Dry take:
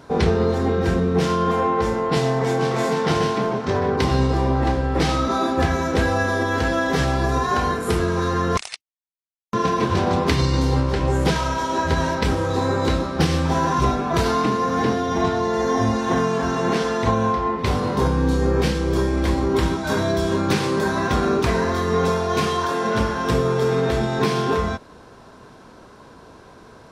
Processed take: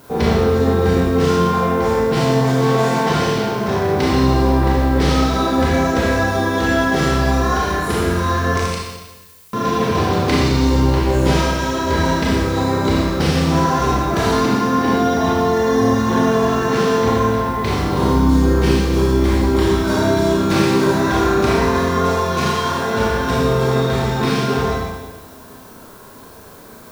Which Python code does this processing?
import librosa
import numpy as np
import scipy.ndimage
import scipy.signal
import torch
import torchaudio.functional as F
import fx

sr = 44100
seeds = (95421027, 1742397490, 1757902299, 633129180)

y = fx.dmg_noise_colour(x, sr, seeds[0], colour='blue', level_db=-51.0)
y = fx.rev_schroeder(y, sr, rt60_s=1.2, comb_ms=27, drr_db=-4.5)
y = y * librosa.db_to_amplitude(-1.5)